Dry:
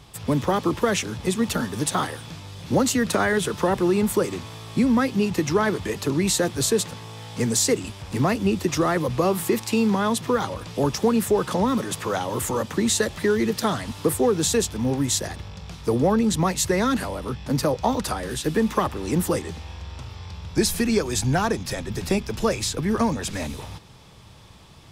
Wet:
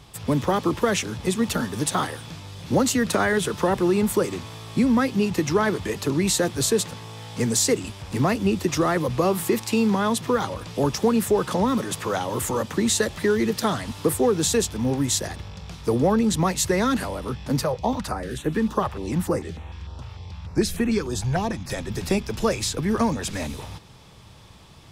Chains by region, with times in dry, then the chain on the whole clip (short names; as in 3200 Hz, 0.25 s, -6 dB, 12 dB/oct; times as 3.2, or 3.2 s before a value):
17.63–21.7 high shelf 4500 Hz -8.5 dB + stepped notch 6.7 Hz 280–4900 Hz
whole clip: dry